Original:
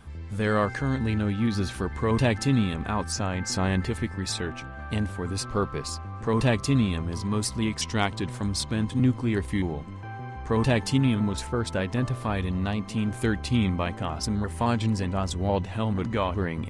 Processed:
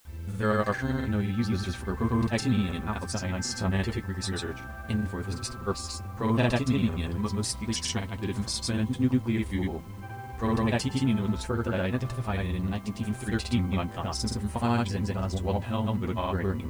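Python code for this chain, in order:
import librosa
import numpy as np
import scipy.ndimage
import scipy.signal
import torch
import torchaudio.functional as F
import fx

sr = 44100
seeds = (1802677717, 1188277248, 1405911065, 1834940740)

y = fx.granulator(x, sr, seeds[0], grain_ms=100.0, per_s=20.0, spray_ms=100.0, spread_st=0)
y = fx.notch_comb(y, sr, f0_hz=150.0)
y = fx.dmg_noise_colour(y, sr, seeds[1], colour='white', level_db=-62.0)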